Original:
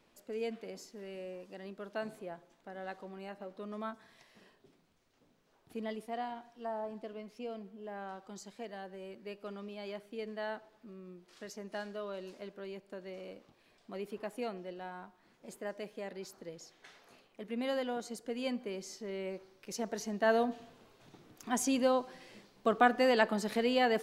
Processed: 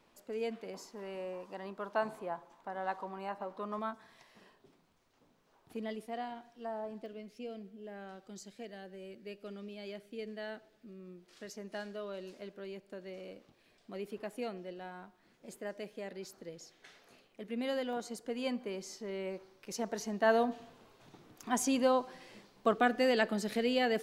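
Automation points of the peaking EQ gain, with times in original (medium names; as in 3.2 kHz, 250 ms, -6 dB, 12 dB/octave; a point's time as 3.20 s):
peaking EQ 980 Hz 0.85 oct
+4 dB
from 0.74 s +14.5 dB
from 3.79 s +4.5 dB
from 5.77 s -3.5 dB
from 7.06 s -11.5 dB
from 11.00 s -4 dB
from 17.93 s +2.5 dB
from 22.74 s -7.5 dB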